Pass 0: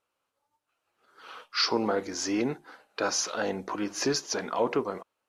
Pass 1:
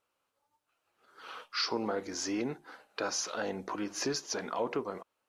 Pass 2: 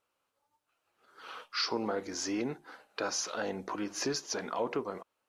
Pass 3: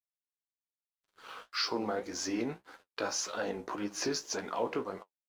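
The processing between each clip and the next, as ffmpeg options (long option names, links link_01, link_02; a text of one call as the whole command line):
ffmpeg -i in.wav -af "acompressor=threshold=-40dB:ratio=1.5" out.wav
ffmpeg -i in.wav -af anull out.wav
ffmpeg -i in.wav -af "aeval=exprs='sgn(val(0))*max(abs(val(0))-0.00133,0)':channel_layout=same,flanger=delay=9.4:depth=9.6:regen=43:speed=1.8:shape=sinusoidal,volume=4dB" out.wav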